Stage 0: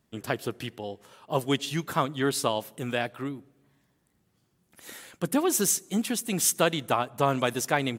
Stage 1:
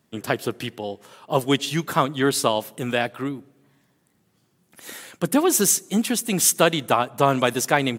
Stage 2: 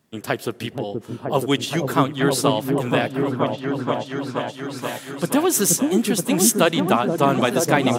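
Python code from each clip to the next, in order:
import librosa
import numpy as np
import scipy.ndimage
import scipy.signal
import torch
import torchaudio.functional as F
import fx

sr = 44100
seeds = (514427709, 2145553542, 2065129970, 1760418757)

y1 = scipy.signal.sosfilt(scipy.signal.butter(2, 110.0, 'highpass', fs=sr, output='sos'), x)
y1 = F.gain(torch.from_numpy(y1), 6.0).numpy()
y2 = fx.echo_opening(y1, sr, ms=477, hz=400, octaves=1, feedback_pct=70, wet_db=0)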